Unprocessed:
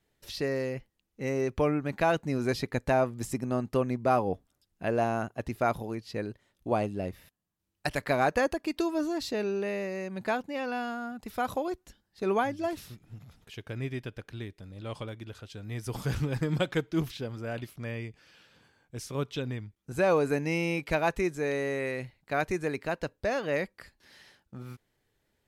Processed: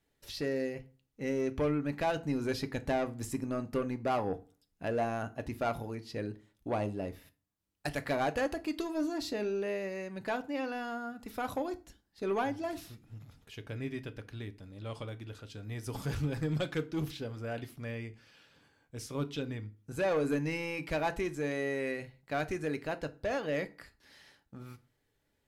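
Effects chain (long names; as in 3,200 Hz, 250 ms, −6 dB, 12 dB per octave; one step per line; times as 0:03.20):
soft clipping −22 dBFS, distortion −15 dB
on a send: convolution reverb RT60 0.35 s, pre-delay 4 ms, DRR 9.5 dB
on the sum: level −3 dB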